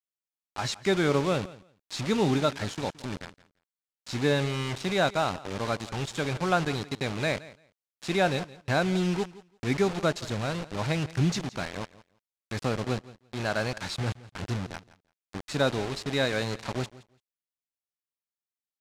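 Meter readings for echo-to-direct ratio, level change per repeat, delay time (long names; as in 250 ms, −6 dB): −19.0 dB, −16.0 dB, 170 ms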